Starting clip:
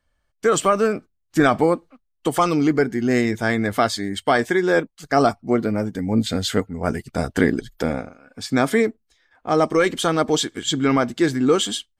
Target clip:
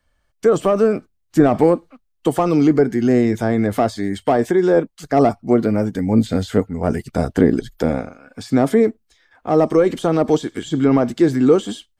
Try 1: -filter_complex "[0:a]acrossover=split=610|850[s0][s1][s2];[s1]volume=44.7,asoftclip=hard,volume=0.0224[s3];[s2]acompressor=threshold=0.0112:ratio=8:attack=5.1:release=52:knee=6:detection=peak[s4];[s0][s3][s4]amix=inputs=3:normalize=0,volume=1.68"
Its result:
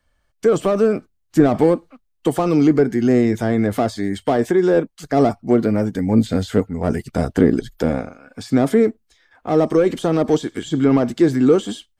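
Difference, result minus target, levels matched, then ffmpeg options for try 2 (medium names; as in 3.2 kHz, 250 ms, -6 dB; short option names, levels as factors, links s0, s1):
overload inside the chain: distortion +10 dB
-filter_complex "[0:a]acrossover=split=610|850[s0][s1][s2];[s1]volume=15,asoftclip=hard,volume=0.0668[s3];[s2]acompressor=threshold=0.0112:ratio=8:attack=5.1:release=52:knee=6:detection=peak[s4];[s0][s3][s4]amix=inputs=3:normalize=0,volume=1.68"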